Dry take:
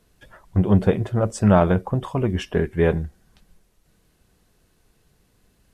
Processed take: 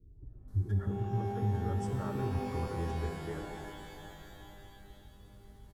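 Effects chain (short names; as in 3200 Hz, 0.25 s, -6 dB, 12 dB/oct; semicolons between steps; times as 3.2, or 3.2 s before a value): tone controls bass +13 dB, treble -4 dB; compressor 2:1, threshold -40 dBFS, peak gain reduction 21 dB; fixed phaser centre 710 Hz, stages 6; notch comb 520 Hz; bands offset in time lows, highs 0.48 s, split 390 Hz; shimmer reverb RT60 2.7 s, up +12 st, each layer -2 dB, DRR 5 dB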